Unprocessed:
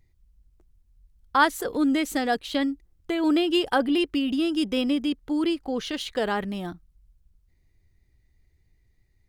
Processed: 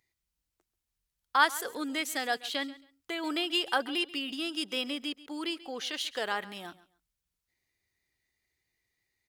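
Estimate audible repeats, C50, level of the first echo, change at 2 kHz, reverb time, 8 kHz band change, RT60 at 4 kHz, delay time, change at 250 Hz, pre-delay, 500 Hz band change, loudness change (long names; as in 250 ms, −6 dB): 2, no reverb audible, −18.5 dB, −2.0 dB, no reverb audible, 0.0 dB, no reverb audible, 136 ms, −13.5 dB, no reverb audible, −10.0 dB, −6.5 dB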